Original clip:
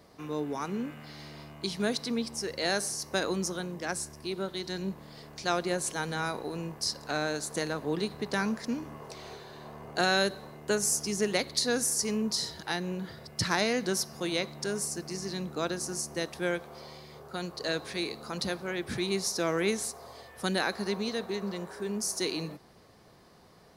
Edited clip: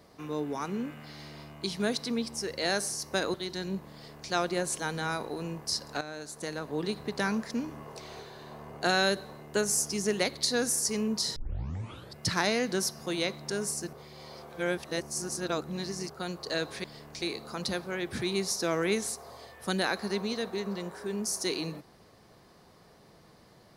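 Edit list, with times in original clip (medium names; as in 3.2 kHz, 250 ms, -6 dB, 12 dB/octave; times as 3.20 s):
3.34–4.48 s: delete
5.07–5.45 s: copy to 17.98 s
7.15–8.15 s: fade in, from -12.5 dB
12.50 s: tape start 0.80 s
15.07–17.24 s: reverse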